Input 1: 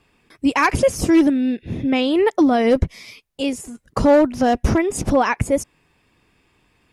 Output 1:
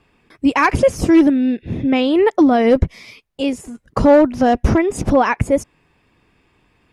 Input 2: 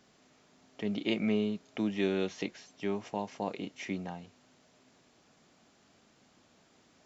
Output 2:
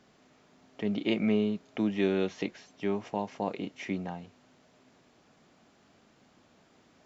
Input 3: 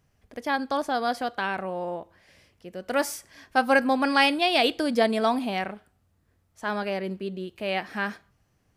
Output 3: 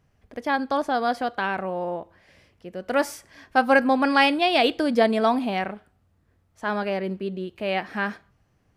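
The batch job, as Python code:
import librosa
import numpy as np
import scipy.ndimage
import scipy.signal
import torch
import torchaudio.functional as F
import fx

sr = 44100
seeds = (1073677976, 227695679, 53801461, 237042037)

y = fx.high_shelf(x, sr, hz=4300.0, db=-8.5)
y = y * 10.0 ** (3.0 / 20.0)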